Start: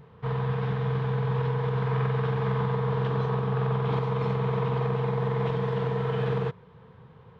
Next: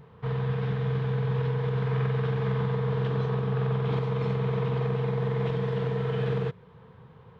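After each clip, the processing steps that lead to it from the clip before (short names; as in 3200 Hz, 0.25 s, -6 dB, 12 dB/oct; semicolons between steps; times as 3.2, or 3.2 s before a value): dynamic EQ 960 Hz, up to -6 dB, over -45 dBFS, Q 1.5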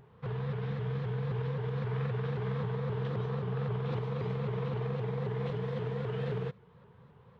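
shaped vibrato saw up 3.8 Hz, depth 160 cents; gain -6.5 dB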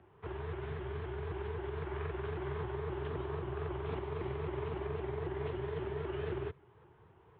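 mistuned SSB -56 Hz 160–3400 Hz; gain -1 dB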